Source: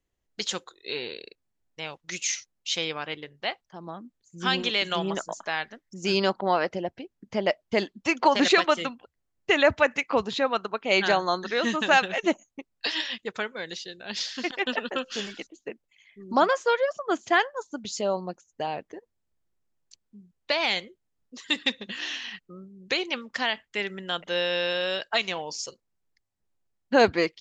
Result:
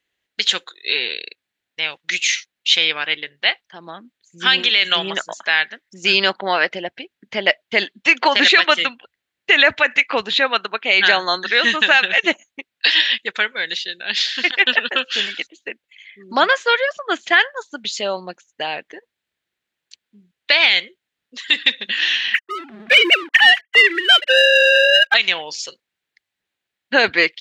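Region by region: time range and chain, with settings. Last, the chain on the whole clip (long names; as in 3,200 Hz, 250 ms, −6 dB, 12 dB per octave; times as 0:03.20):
0:22.34–0:25.14: three sine waves on the formant tracks + leveller curve on the samples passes 3
whole clip: high-pass filter 340 Hz 6 dB per octave; flat-topped bell 2,500 Hz +11 dB; boost into a limiter +5.5 dB; level −1 dB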